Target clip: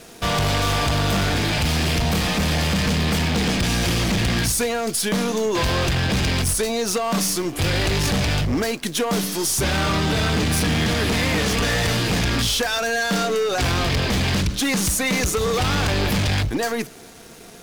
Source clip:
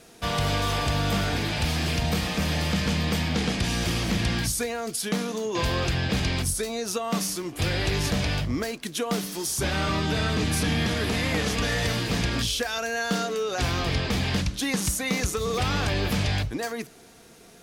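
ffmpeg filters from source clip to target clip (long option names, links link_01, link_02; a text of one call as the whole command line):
ffmpeg -i in.wav -filter_complex "[0:a]asplit=2[link_01][link_02];[link_02]acrusher=bits=5:dc=4:mix=0:aa=0.000001,volume=-7dB[link_03];[link_01][link_03]amix=inputs=2:normalize=0,asoftclip=type=hard:threshold=-24dB,volume=6.5dB" out.wav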